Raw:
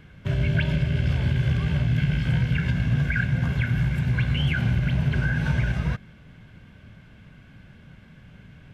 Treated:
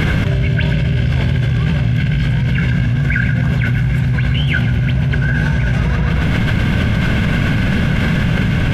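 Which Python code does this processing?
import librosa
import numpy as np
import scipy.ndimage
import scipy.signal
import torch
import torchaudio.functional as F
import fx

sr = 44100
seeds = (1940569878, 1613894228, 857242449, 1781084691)

p1 = x + fx.echo_filtered(x, sr, ms=133, feedback_pct=28, hz=4500.0, wet_db=-9.0, dry=0)
p2 = fx.env_flatten(p1, sr, amount_pct=100)
y = p2 * 10.0 ** (3.0 / 20.0)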